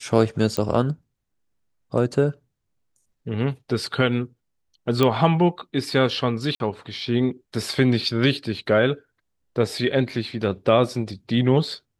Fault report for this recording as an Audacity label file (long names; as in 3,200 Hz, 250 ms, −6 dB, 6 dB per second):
0.570000	0.570000	click −10 dBFS
5.030000	5.030000	click −7 dBFS
6.550000	6.600000	drop-out 51 ms